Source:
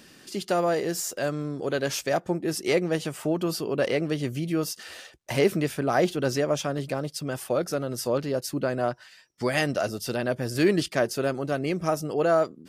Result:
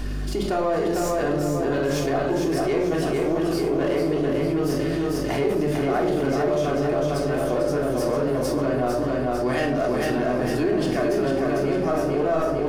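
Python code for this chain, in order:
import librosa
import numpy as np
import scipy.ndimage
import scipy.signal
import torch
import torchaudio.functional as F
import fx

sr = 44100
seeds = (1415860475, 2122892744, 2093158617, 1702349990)

p1 = np.where(x < 0.0, 10.0 ** (-7.0 / 20.0) * x, x)
p2 = scipy.signal.sosfilt(scipy.signal.butter(2, 220.0, 'highpass', fs=sr, output='sos'), p1)
p3 = fx.high_shelf(p2, sr, hz=2100.0, db=-11.0)
p4 = np.clip(p3, -10.0 ** (-31.5 / 20.0), 10.0 ** (-31.5 / 20.0))
p5 = p3 + (p4 * librosa.db_to_amplitude(-3.0))
p6 = fx.add_hum(p5, sr, base_hz=50, snr_db=18)
p7 = p6 + fx.echo_feedback(p6, sr, ms=449, feedback_pct=49, wet_db=-4, dry=0)
p8 = fx.room_shoebox(p7, sr, seeds[0], volume_m3=1000.0, walls='furnished', distance_m=3.3)
p9 = fx.env_flatten(p8, sr, amount_pct=70)
y = p9 * librosa.db_to_amplitude(-6.5)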